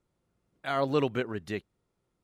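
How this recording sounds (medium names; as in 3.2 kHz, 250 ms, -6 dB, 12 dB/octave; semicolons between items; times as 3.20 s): noise floor -80 dBFS; spectral tilt -5.0 dB/octave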